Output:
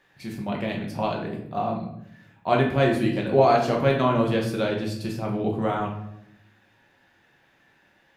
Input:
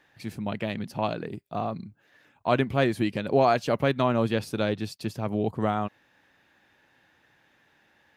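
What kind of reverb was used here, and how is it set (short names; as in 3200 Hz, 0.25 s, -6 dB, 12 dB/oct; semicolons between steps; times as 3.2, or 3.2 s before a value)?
shoebox room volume 170 m³, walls mixed, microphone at 1.1 m; gain -1.5 dB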